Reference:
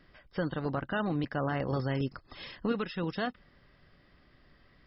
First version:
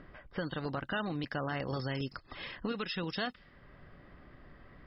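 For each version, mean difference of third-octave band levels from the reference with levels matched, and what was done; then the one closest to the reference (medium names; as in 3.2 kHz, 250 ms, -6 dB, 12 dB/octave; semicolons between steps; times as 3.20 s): 4.5 dB: in parallel at -2.5 dB: upward compressor, threshold -36 dBFS; on the sum: level-controlled noise filter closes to 1 kHz, open at -23.5 dBFS; compression 2.5:1, threshold -30 dBFS, peak gain reduction 7.5 dB; treble shelf 2.3 kHz +12 dB; trim -5 dB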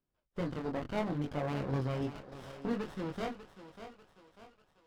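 8.0 dB: gate -49 dBFS, range -22 dB; chorus 0.69 Hz, delay 20 ms, depth 5.1 ms; thinning echo 594 ms, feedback 52%, high-pass 500 Hz, level -10 dB; sliding maximum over 17 samples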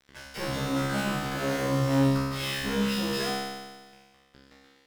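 13.0 dB: coarse spectral quantiser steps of 15 dB; fuzz box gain 55 dB, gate -53 dBFS; feedback comb 68 Hz, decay 1.4 s, harmonics all, mix 100%; flutter echo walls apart 6.9 m, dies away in 0.28 s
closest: first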